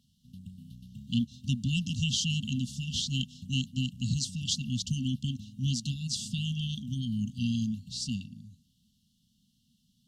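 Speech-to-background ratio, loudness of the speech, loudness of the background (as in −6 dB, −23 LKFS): 17.5 dB, −32.0 LKFS, −49.5 LKFS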